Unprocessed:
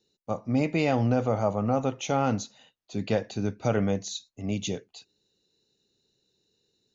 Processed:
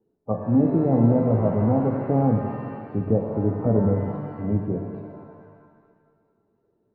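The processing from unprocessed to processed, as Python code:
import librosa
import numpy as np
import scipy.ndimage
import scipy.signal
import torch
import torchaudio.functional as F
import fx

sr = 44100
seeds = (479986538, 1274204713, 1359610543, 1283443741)

y = fx.spec_quant(x, sr, step_db=15)
y = fx.env_lowpass_down(y, sr, base_hz=510.0, full_db=-26.0)
y = scipy.signal.sosfilt(scipy.signal.butter(4, 1300.0, 'lowpass', fs=sr, output='sos'), y)
y = fx.peak_eq(y, sr, hz=270.0, db=2.0, octaves=0.77)
y = fx.rev_shimmer(y, sr, seeds[0], rt60_s=1.8, semitones=7, shimmer_db=-8, drr_db=3.0)
y = y * librosa.db_to_amplitude(5.0)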